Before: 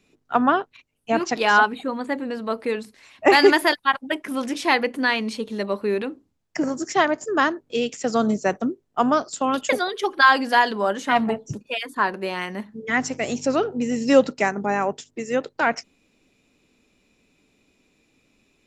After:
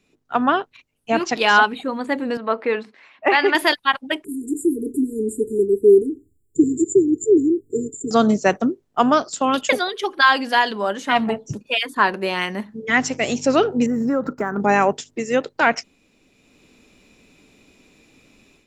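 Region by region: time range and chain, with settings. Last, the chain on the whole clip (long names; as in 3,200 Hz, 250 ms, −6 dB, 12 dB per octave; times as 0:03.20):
0:02.37–0:03.55: band-pass filter 130–2,300 Hz + low-shelf EQ 360 Hz −11.5 dB
0:04.24–0:08.11: linear-phase brick-wall band-stop 450–6,900 Hz + comb filter 2.4 ms, depth 67%
0:13.86–0:14.60: drawn EQ curve 350 Hz 0 dB, 710 Hz −6 dB, 1,400 Hz +5 dB, 2,800 Hz −27 dB, 12,000 Hz −8 dB + downward compressor, threshold −24 dBFS + linearly interpolated sample-rate reduction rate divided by 2×
whole clip: dynamic equaliser 3,100 Hz, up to +5 dB, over −36 dBFS, Q 1.4; automatic gain control; level −1.5 dB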